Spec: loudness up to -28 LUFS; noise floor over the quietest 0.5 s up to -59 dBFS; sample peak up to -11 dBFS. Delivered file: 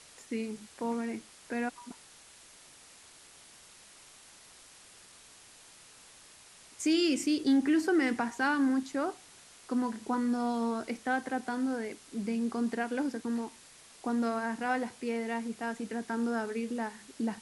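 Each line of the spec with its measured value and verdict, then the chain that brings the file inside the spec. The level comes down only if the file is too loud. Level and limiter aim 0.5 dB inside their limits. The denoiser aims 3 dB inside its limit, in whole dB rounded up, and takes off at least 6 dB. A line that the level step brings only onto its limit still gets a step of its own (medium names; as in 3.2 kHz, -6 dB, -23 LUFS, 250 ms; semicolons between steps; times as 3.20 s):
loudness -32.5 LUFS: pass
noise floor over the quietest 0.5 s -56 dBFS: fail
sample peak -17.5 dBFS: pass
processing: noise reduction 6 dB, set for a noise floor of -56 dBFS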